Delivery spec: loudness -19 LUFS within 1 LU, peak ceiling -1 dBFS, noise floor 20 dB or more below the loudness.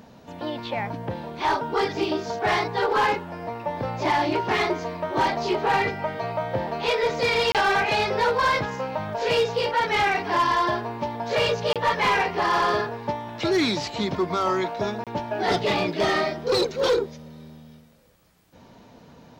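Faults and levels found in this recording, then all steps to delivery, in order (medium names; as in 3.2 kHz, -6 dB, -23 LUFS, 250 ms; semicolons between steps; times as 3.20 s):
clipped samples 1.2%; clipping level -16.0 dBFS; dropouts 3; longest dropout 27 ms; loudness -24.0 LUFS; peak level -16.0 dBFS; loudness target -19.0 LUFS
-> clip repair -16 dBFS; interpolate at 7.52/11.73/15.04 s, 27 ms; trim +5 dB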